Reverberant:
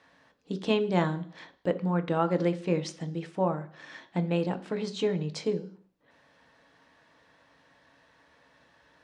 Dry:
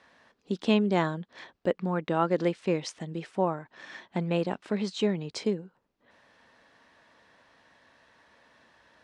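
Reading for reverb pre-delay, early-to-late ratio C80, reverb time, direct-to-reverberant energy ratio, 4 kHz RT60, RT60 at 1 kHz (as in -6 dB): 3 ms, 19.0 dB, 0.55 s, 8.0 dB, 0.65 s, 0.55 s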